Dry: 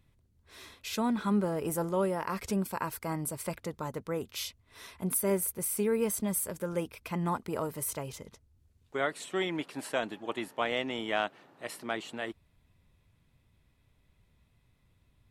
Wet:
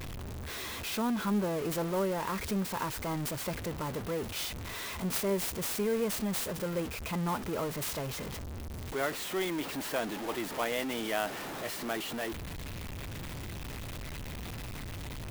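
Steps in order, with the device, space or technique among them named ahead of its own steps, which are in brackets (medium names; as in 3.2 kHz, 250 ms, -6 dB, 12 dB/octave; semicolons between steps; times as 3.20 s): early CD player with a faulty converter (jump at every zero crossing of -30 dBFS; sampling jitter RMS 0.028 ms); trim -4 dB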